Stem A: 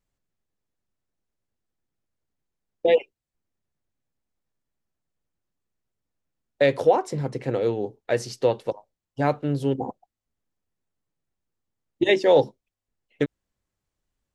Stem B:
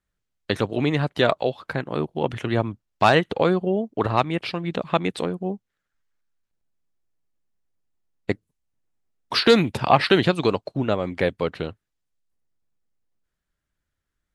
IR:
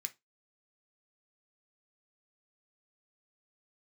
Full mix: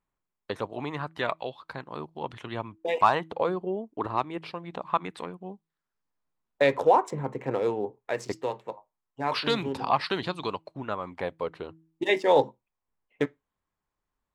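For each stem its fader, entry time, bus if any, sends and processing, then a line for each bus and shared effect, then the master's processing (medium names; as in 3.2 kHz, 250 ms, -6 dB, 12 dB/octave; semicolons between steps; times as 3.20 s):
-4.5 dB, 0.00 s, send -4 dB, local Wiener filter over 9 samples; auto duck -8 dB, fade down 0.35 s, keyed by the second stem
-13.5 dB, 0.00 s, send -16.5 dB, de-hum 161.3 Hz, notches 2; sweeping bell 0.25 Hz 310–4900 Hz +7 dB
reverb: on, RT60 0.20 s, pre-delay 3 ms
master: peaking EQ 1 kHz +10.5 dB 0.69 oct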